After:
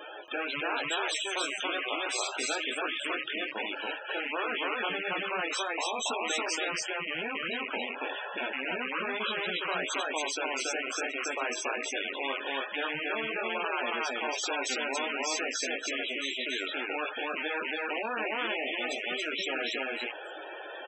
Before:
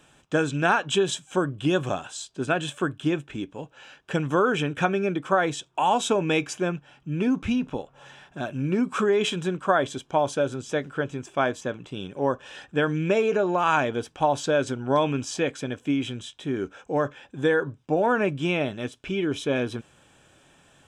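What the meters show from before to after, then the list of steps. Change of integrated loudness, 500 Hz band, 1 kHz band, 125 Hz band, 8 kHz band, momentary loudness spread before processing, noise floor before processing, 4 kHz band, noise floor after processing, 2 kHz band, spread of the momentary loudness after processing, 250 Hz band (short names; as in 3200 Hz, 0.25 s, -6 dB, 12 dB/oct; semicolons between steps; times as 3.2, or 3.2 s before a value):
-6.0 dB, -10.5 dB, -7.5 dB, -27.0 dB, +1.0 dB, 11 LU, -59 dBFS, +2.0 dB, -42 dBFS, -0.5 dB, 3 LU, -14.5 dB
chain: rattling part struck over -37 dBFS, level -21 dBFS; low shelf 440 Hz -3 dB; notch 7100 Hz, Q 10; in parallel at +1 dB: compressor, threshold -33 dBFS, peak gain reduction 15.5 dB; on the sum: ladder high-pass 340 Hz, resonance 30%; chorus 1.1 Hz, delay 17.5 ms, depth 5 ms; resonator 630 Hz, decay 0.23 s, harmonics all, mix 50%; loudest bins only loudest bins 32; echo 0.28 s -3.5 dB; spectral compressor 4:1; gain +2.5 dB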